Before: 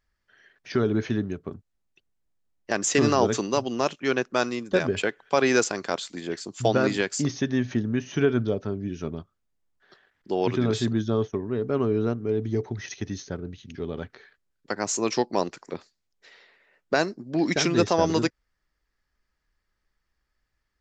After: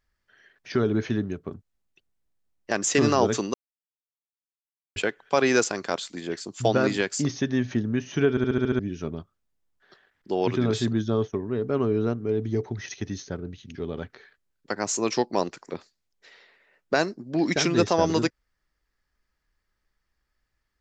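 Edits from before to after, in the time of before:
0:03.54–0:04.96: silence
0:08.30: stutter in place 0.07 s, 7 plays

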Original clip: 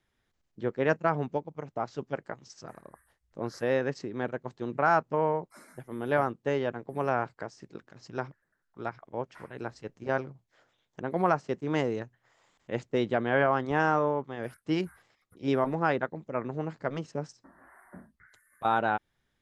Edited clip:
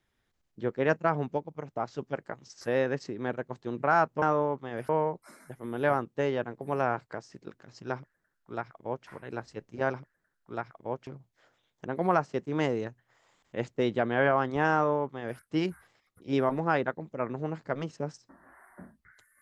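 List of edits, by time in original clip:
0:02.61–0:03.56: remove
0:08.22–0:09.35: duplicate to 0:10.22
0:13.88–0:14.55: duplicate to 0:05.17

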